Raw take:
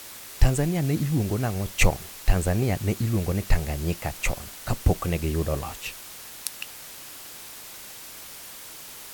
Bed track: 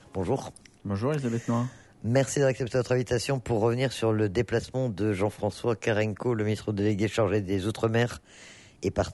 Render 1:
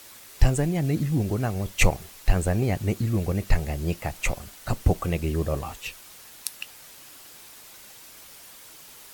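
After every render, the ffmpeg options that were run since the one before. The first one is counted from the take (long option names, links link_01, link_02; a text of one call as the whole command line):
ffmpeg -i in.wav -af "afftdn=noise_reduction=6:noise_floor=-42" out.wav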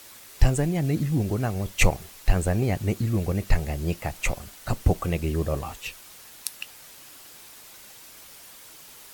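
ffmpeg -i in.wav -af anull out.wav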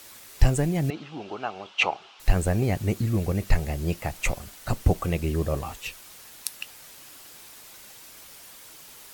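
ffmpeg -i in.wav -filter_complex "[0:a]asettb=1/sr,asplit=3[link_01][link_02][link_03];[link_01]atrim=end=0.904[link_04];[link_02]atrim=start=0.9:end=2.2,asetpts=PTS-STARTPTS,afade=type=in:duration=0.004:curve=qsin,afade=type=out:start_time=1.296:duration=0.004:curve=qsin,highpass=490,equalizer=frequency=530:width_type=q:width=4:gain=-5,equalizer=frequency=840:width_type=q:width=4:gain=6,equalizer=frequency=1300:width_type=q:width=4:gain=5,equalizer=frequency=1900:width_type=q:width=4:gain=-8,equalizer=frequency=2900:width_type=q:width=4:gain=7,equalizer=frequency=4500:width_type=q:width=4:gain=-3,lowpass=frequency=4600:width=0.5412,lowpass=frequency=4600:width=1.3066[link_05];[link_03]atrim=start=2.196[link_06];[link_04][link_05]acrossfade=duration=0.004:curve1=hsin:curve2=qsin[link_07];[link_07][link_06]acrossfade=duration=0.004:curve1=qsin:curve2=hsin" out.wav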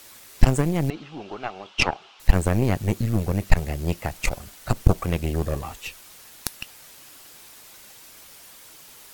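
ffmpeg -i in.wav -af "aeval=exprs='0.596*(cos(1*acos(clip(val(0)/0.596,-1,1)))-cos(1*PI/2))+0.211*(cos(4*acos(clip(val(0)/0.596,-1,1)))-cos(4*PI/2))':channel_layout=same" out.wav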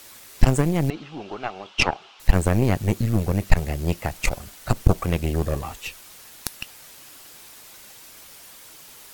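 ffmpeg -i in.wav -af "volume=1.5dB,alimiter=limit=-2dB:level=0:latency=1" out.wav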